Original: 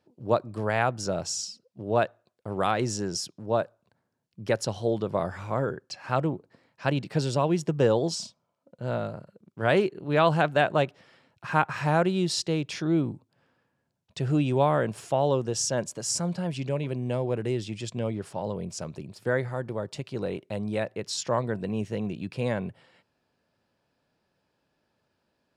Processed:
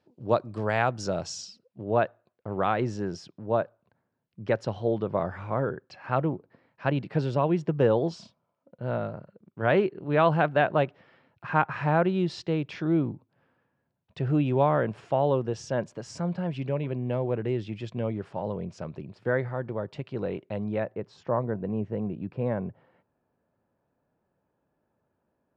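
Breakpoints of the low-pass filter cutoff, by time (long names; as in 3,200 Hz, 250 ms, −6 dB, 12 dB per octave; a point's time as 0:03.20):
0:01.13 5,800 Hz
0:01.90 2,500 Hz
0:20.61 2,500 Hz
0:21.05 1,200 Hz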